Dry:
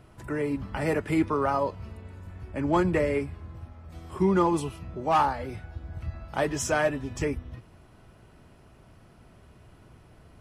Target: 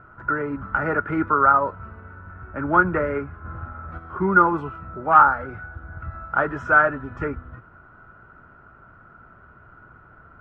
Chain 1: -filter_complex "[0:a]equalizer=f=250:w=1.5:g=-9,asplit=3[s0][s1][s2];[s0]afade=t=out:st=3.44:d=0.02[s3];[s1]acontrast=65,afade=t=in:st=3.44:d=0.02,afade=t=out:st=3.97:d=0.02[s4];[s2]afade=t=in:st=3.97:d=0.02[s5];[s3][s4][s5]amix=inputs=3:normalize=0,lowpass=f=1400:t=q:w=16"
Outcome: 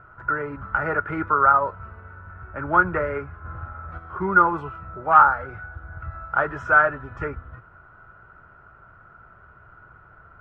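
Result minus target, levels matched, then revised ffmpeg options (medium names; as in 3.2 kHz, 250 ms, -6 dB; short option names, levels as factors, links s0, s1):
250 Hz band -5.0 dB
-filter_complex "[0:a]asplit=3[s0][s1][s2];[s0]afade=t=out:st=3.44:d=0.02[s3];[s1]acontrast=65,afade=t=in:st=3.44:d=0.02,afade=t=out:st=3.97:d=0.02[s4];[s2]afade=t=in:st=3.97:d=0.02[s5];[s3][s4][s5]amix=inputs=3:normalize=0,lowpass=f=1400:t=q:w=16"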